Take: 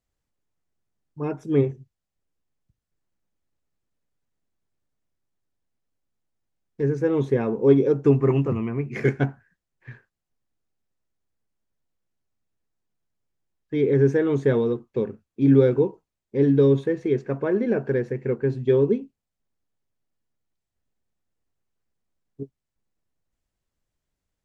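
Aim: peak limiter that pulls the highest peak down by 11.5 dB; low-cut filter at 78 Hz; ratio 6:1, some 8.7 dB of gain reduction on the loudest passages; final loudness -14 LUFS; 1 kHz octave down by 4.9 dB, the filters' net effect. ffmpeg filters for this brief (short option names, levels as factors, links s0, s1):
-af "highpass=78,equalizer=f=1000:t=o:g=-6.5,acompressor=threshold=0.0891:ratio=6,volume=9.44,alimiter=limit=0.562:level=0:latency=1"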